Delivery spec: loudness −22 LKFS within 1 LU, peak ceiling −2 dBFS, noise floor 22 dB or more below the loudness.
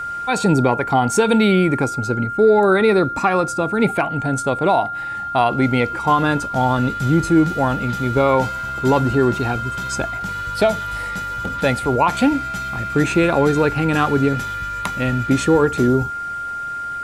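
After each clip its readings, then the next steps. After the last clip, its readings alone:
interfering tone 1,400 Hz; level of the tone −24 dBFS; integrated loudness −18.5 LKFS; sample peak −4.0 dBFS; target loudness −22.0 LKFS
→ notch filter 1,400 Hz, Q 30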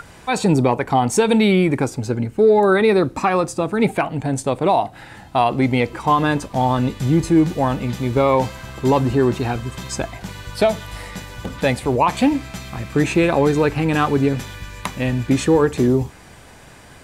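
interfering tone none found; integrated loudness −18.5 LKFS; sample peak −4.5 dBFS; target loudness −22.0 LKFS
→ level −3.5 dB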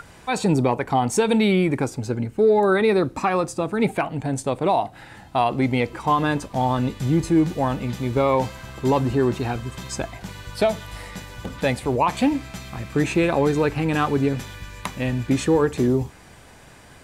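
integrated loudness −22.0 LKFS; sample peak −8.0 dBFS; background noise floor −47 dBFS

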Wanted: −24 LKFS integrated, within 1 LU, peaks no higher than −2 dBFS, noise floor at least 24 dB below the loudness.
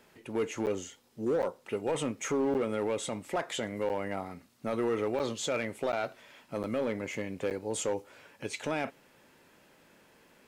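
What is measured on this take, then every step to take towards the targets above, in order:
share of clipped samples 1.3%; peaks flattened at −24.0 dBFS; number of dropouts 8; longest dropout 8.8 ms; integrated loudness −33.5 LKFS; sample peak −24.0 dBFS; target loudness −24.0 LKFS
→ clipped peaks rebuilt −24 dBFS
repair the gap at 0:00.66/0:01.42/0:02.54/0:03.89/0:05.19/0:05.92/0:06.63/0:07.50, 8.8 ms
level +9.5 dB

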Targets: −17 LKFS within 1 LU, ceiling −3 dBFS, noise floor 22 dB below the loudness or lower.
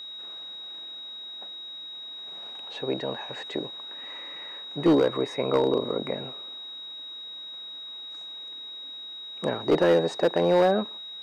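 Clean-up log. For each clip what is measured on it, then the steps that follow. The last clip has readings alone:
share of clipped samples 0.6%; peaks flattened at −14.5 dBFS; interfering tone 3,800 Hz; level of the tone −37 dBFS; integrated loudness −28.5 LKFS; sample peak −14.5 dBFS; target loudness −17.0 LKFS
→ clipped peaks rebuilt −14.5 dBFS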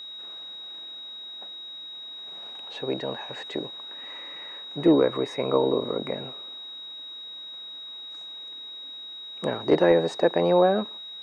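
share of clipped samples 0.0%; interfering tone 3,800 Hz; level of the tone −37 dBFS
→ notch filter 3,800 Hz, Q 30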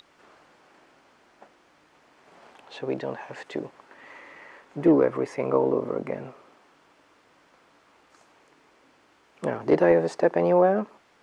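interfering tone none found; integrated loudness −24.5 LKFS; sample peak −7.5 dBFS; target loudness −17.0 LKFS
→ level +7.5 dB
brickwall limiter −3 dBFS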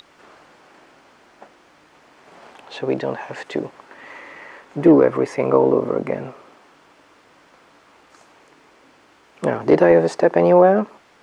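integrated loudness −17.5 LKFS; sample peak −3.0 dBFS; background noise floor −54 dBFS

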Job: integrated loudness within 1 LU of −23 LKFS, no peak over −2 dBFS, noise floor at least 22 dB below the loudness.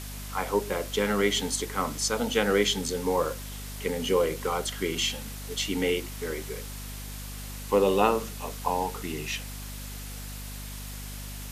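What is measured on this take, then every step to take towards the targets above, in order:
mains hum 50 Hz; hum harmonics up to 250 Hz; level of the hum −37 dBFS; background noise floor −38 dBFS; target noise floor −51 dBFS; integrated loudness −29.0 LKFS; sample peak −8.5 dBFS; target loudness −23.0 LKFS
→ hum removal 50 Hz, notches 5
broadband denoise 13 dB, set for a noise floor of −38 dBFS
level +6 dB

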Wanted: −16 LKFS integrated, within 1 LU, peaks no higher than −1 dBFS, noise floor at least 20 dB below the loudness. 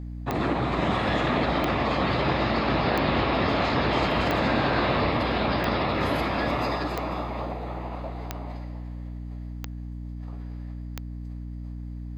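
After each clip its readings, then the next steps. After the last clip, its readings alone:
number of clicks 9; mains hum 60 Hz; hum harmonics up to 300 Hz; level of the hum −33 dBFS; integrated loudness −25.5 LKFS; sample peak −10.5 dBFS; target loudness −16.0 LKFS
→ click removal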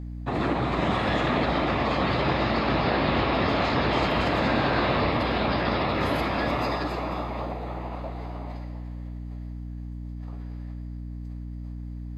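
number of clicks 0; mains hum 60 Hz; hum harmonics up to 300 Hz; level of the hum −33 dBFS
→ hum removal 60 Hz, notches 5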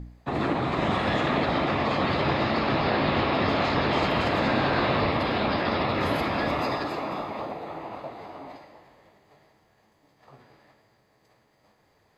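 mains hum none found; integrated loudness −25.5 LKFS; sample peak −11.0 dBFS; target loudness −16.0 LKFS
→ level +9.5 dB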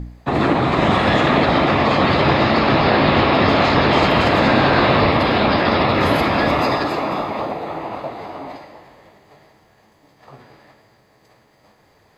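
integrated loudness −16.0 LKFS; sample peak −1.5 dBFS; background noise floor −56 dBFS

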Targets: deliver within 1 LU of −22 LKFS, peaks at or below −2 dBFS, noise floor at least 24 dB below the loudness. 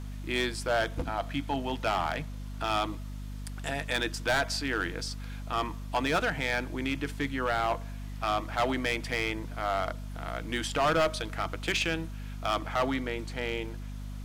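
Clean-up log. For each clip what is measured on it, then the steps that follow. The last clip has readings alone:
share of clipped samples 1.7%; peaks flattened at −21.5 dBFS; mains hum 50 Hz; hum harmonics up to 250 Hz; level of the hum −36 dBFS; integrated loudness −31.0 LKFS; sample peak −21.5 dBFS; target loudness −22.0 LKFS
→ clipped peaks rebuilt −21.5 dBFS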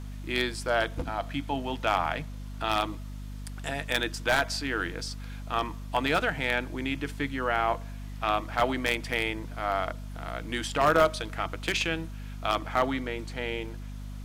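share of clipped samples 0.0%; mains hum 50 Hz; hum harmonics up to 250 Hz; level of the hum −36 dBFS
→ hum removal 50 Hz, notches 5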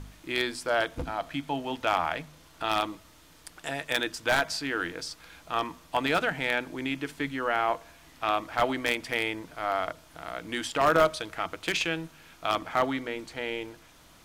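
mains hum none found; integrated loudness −29.5 LKFS; sample peak −11.5 dBFS; target loudness −22.0 LKFS
→ level +7.5 dB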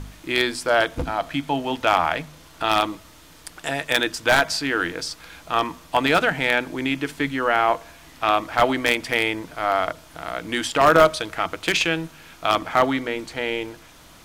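integrated loudness −22.0 LKFS; sample peak −4.0 dBFS; background noise floor −48 dBFS

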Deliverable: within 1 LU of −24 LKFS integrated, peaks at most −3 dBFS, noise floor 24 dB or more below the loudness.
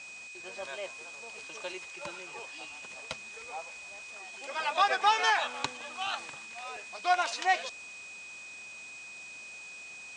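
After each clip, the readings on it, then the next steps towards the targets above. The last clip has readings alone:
interfering tone 2,500 Hz; level of the tone −44 dBFS; background noise floor −46 dBFS; target noise floor −58 dBFS; integrated loudness −34.0 LKFS; sample peak −11.0 dBFS; target loudness −24.0 LKFS
→ notch filter 2,500 Hz, Q 30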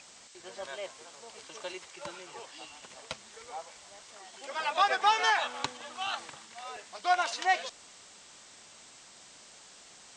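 interfering tone none found; background noise floor −54 dBFS; target noise floor −56 dBFS
→ broadband denoise 6 dB, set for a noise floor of −54 dBFS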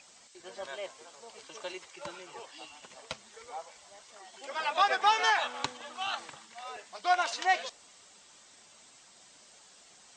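background noise floor −58 dBFS; integrated loudness −31.5 LKFS; sample peak −11.0 dBFS; target loudness −24.0 LKFS
→ level +7.5 dB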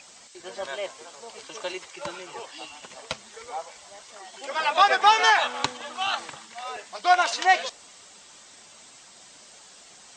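integrated loudness −24.0 LKFS; sample peak −3.5 dBFS; background noise floor −50 dBFS

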